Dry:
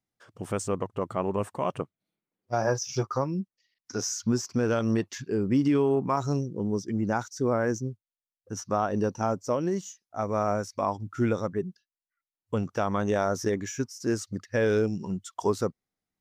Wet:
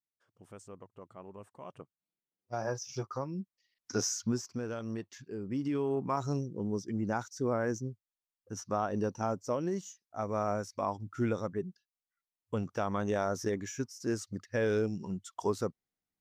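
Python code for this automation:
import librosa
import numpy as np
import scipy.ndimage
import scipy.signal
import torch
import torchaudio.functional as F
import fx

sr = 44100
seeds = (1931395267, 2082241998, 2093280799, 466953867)

y = fx.gain(x, sr, db=fx.line((1.46, -20.0), (2.54, -9.0), (3.26, -9.0), (3.97, 0.0), (4.68, -12.5), (5.4, -12.5), (6.14, -5.5)))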